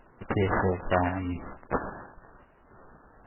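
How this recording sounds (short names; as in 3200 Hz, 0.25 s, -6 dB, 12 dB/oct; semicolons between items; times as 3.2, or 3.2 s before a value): random-step tremolo 3.7 Hz; aliases and images of a low sample rate 2500 Hz, jitter 20%; MP3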